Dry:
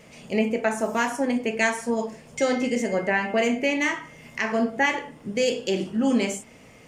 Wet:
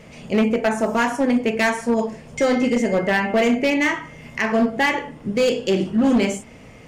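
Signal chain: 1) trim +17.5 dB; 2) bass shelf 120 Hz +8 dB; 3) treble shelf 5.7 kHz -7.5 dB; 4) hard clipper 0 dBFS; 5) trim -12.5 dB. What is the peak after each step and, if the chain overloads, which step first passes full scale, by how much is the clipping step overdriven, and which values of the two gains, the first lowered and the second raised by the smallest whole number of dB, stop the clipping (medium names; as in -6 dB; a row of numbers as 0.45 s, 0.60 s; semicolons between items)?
+9.0 dBFS, +9.0 dBFS, +8.0 dBFS, 0.0 dBFS, -12.5 dBFS; step 1, 8.0 dB; step 1 +9.5 dB, step 5 -4.5 dB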